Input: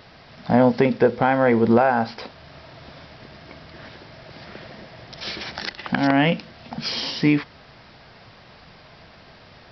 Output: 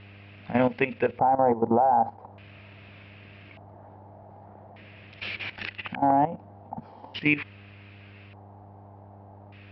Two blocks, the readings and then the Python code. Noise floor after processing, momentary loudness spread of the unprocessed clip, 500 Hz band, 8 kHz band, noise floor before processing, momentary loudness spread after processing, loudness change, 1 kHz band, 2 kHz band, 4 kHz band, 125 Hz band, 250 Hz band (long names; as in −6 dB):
−49 dBFS, 23 LU, −6.0 dB, can't be measured, −48 dBFS, 20 LU, −4.5 dB, 0.0 dB, −5.5 dB, −11.5 dB, −9.0 dB, −8.5 dB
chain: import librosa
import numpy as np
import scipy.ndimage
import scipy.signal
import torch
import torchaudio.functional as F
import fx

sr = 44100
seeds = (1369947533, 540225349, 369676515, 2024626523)

y = fx.dmg_buzz(x, sr, base_hz=100.0, harmonics=7, level_db=-39.0, tilt_db=-8, odd_only=False)
y = fx.filter_lfo_lowpass(y, sr, shape='square', hz=0.42, low_hz=830.0, high_hz=2600.0, q=5.7)
y = fx.level_steps(y, sr, step_db=14)
y = y * librosa.db_to_amplitude(-6.0)